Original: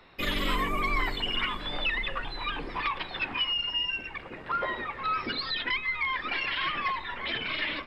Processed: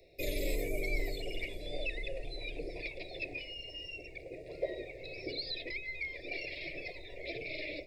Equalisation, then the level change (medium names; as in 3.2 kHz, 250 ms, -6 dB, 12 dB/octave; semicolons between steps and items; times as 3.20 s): elliptic band-stop 700–2400 Hz, stop band 50 dB; bass shelf 170 Hz -6 dB; static phaser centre 830 Hz, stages 6; +3.0 dB